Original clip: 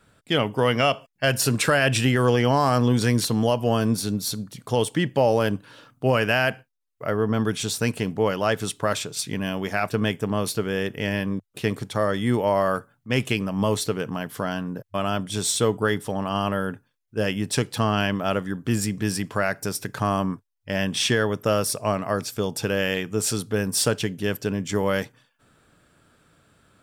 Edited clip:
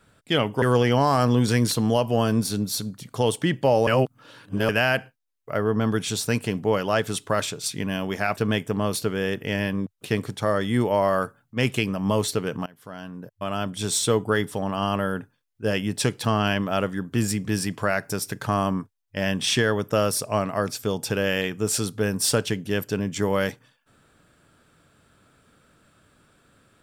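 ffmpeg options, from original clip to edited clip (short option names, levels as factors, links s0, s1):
-filter_complex "[0:a]asplit=5[s0][s1][s2][s3][s4];[s0]atrim=end=0.622[s5];[s1]atrim=start=2.148:end=5.402[s6];[s2]atrim=start=5.398:end=6.222,asetpts=PTS-STARTPTS,areverse[s7];[s3]atrim=start=6.218:end=14.19,asetpts=PTS-STARTPTS,afade=t=out:st=7.968:d=0.004:c=hsin:silence=0.0707946[s8];[s4]atrim=start=14.19,asetpts=PTS-STARTPTS,afade=t=in:d=1.25:silence=0.0707946[s9];[s5][s6]acrossfade=d=0.004:c1=hsin:c2=hsin[s10];[s10][s7]acrossfade=d=0.004:c1=hsin:c2=hsin[s11];[s8][s9]concat=n=2:v=0:a=1[s12];[s11][s12]acrossfade=d=0.004:c1=hsin:c2=hsin"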